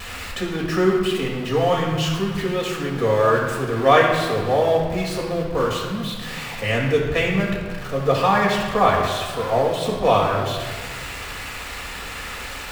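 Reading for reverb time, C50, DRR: 1.7 s, 2.5 dB, -3.0 dB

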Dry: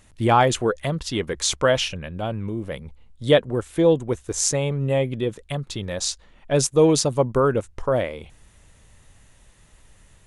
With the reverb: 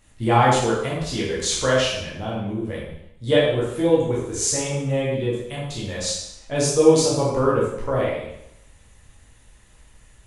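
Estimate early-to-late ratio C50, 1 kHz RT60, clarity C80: 1.0 dB, 0.75 s, 4.0 dB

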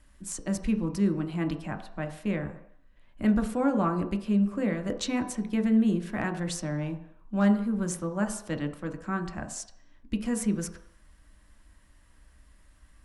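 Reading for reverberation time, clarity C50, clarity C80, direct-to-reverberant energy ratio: 0.70 s, 10.5 dB, 13.0 dB, 4.5 dB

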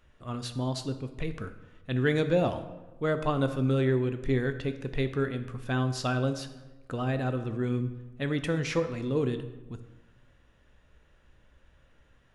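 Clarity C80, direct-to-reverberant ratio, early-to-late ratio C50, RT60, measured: 13.5 dB, 9.0 dB, 11.0 dB, 1.1 s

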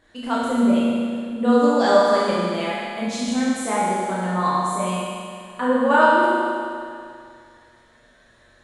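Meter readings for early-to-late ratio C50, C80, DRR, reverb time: -3.5 dB, -2.0 dB, -8.5 dB, 2.3 s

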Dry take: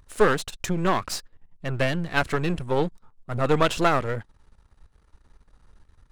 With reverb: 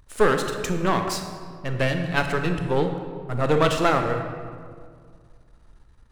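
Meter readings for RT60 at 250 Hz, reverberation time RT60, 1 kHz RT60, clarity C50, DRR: 2.4 s, 2.0 s, 1.9 s, 6.0 dB, 5.0 dB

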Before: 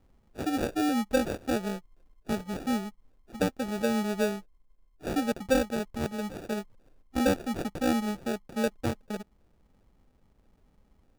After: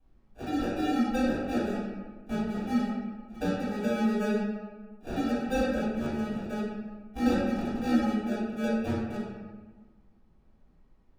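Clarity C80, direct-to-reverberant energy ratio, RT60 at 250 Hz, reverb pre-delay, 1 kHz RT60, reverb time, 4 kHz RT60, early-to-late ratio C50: 1.5 dB, -11.5 dB, 1.7 s, 3 ms, 1.3 s, 1.4 s, 0.80 s, -1.0 dB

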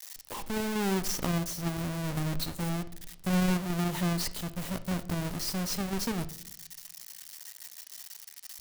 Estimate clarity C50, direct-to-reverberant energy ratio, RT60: 16.0 dB, 11.0 dB, 0.70 s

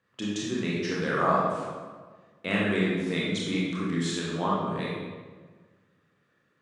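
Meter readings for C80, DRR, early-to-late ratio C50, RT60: 1.5 dB, -5.5 dB, -1.5 dB, 1.5 s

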